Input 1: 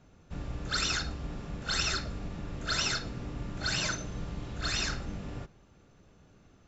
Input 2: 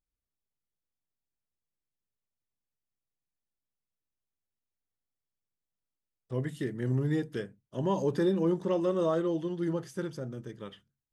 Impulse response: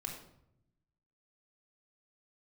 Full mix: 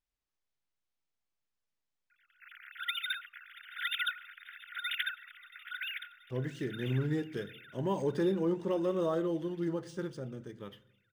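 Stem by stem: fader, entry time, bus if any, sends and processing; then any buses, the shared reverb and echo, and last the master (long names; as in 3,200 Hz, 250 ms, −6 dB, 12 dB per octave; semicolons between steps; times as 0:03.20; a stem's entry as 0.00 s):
+2.0 dB, 2.10 s, send −22 dB, echo send −20.5 dB, three sine waves on the formant tracks; compressor whose output falls as the input rises −33 dBFS, ratio −0.5; Chebyshev high-pass with heavy ripple 1,400 Hz, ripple 3 dB; automatic ducking −16 dB, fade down 0.60 s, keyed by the second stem
−4.5 dB, 0.00 s, send −12 dB, no echo send, high-shelf EQ 4,800 Hz +4.5 dB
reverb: on, RT60 0.75 s, pre-delay 3 ms
echo: repeating echo 680 ms, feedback 58%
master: linearly interpolated sample-rate reduction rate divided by 3×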